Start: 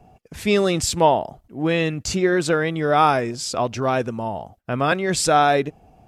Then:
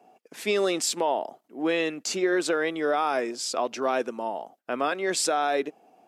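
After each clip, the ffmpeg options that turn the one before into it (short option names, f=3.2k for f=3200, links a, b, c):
-af "highpass=f=270:w=0.5412,highpass=f=270:w=1.3066,alimiter=limit=-12dB:level=0:latency=1:release=106,volume=-3dB"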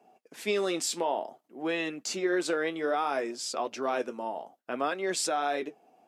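-af "flanger=delay=4.8:depth=7.7:regen=-58:speed=0.58:shape=sinusoidal"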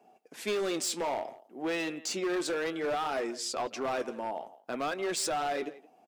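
-filter_complex "[0:a]asplit=2[a][b];[b]adelay=170,highpass=300,lowpass=3.4k,asoftclip=type=hard:threshold=-26.5dB,volume=-18dB[c];[a][c]amix=inputs=2:normalize=0,volume=27.5dB,asoftclip=hard,volume=-27.5dB"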